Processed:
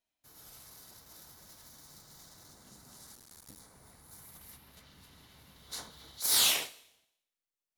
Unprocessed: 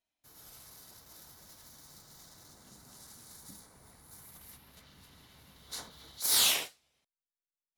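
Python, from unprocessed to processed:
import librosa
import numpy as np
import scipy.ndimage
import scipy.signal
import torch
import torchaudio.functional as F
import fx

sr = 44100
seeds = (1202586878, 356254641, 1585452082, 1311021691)

y = fx.cycle_switch(x, sr, every=2, mode='muted', at=(3.15, 3.6))
y = fx.rev_schroeder(y, sr, rt60_s=0.83, comb_ms=26, drr_db=17.5)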